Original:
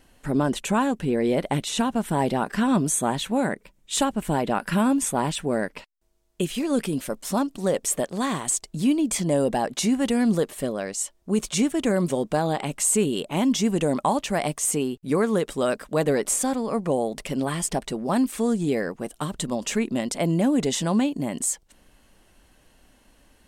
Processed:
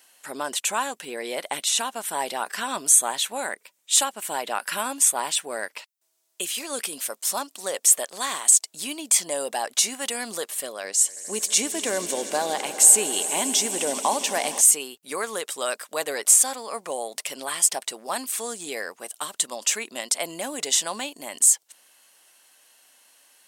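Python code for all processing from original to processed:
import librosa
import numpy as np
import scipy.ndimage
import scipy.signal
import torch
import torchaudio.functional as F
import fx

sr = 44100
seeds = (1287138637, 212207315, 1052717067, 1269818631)

y = fx.chain(x, sr, fx.peak_eq(hz=260.0, db=6.0, octaves=2.5),
    fx.notch(hz=1300.0, q=12.0),
    fx.echo_swell(ms=80, loudest=5, wet_db=-18), at=(10.84, 14.61))
y = scipy.signal.sosfilt(scipy.signal.butter(2, 690.0, 'highpass', fs=sr, output='sos'), y)
y = fx.high_shelf(y, sr, hz=3600.0, db=12.0)
y = y * librosa.db_to_amplitude(-1.0)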